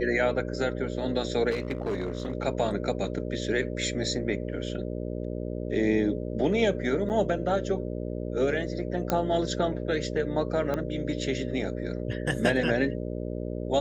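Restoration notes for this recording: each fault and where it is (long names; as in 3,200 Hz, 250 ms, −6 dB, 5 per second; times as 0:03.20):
mains buzz 60 Hz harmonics 10 −33 dBFS
0:01.50–0:02.33: clipping −25 dBFS
0:07.09–0:07.10: drop-out 9 ms
0:09.10: click −11 dBFS
0:10.74: click −17 dBFS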